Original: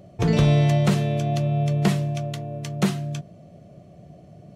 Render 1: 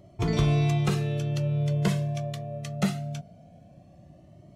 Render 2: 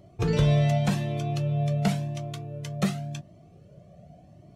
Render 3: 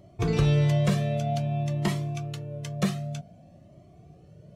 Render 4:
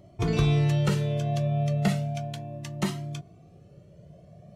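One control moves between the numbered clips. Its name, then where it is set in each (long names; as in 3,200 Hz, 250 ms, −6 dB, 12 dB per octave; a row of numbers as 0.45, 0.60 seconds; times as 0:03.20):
flanger whose copies keep moving one way, speed: 0.22, 0.9, 0.53, 0.34 Hertz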